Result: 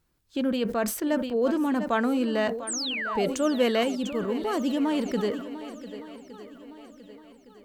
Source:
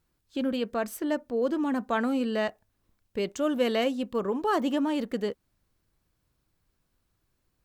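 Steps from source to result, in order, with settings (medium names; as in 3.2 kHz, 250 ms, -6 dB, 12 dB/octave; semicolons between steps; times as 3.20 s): 2.67–3.28 s: painted sound fall 530–9500 Hz -33 dBFS; 3.83–4.80 s: peaking EQ 1.1 kHz -7.5 dB 2.5 oct; shuffle delay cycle 1163 ms, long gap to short 1.5:1, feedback 39%, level -14 dB; decay stretcher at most 73 dB/s; trim +2 dB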